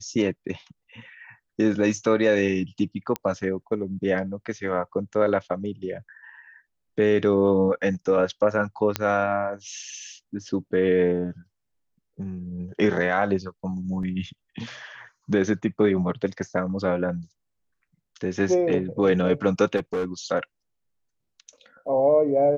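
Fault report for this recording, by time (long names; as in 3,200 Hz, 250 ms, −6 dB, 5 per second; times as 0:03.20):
0:03.16: click −11 dBFS
0:08.96: click −7 dBFS
0:14.03: drop-out 3.2 ms
0:19.76–0:20.05: clipping −22 dBFS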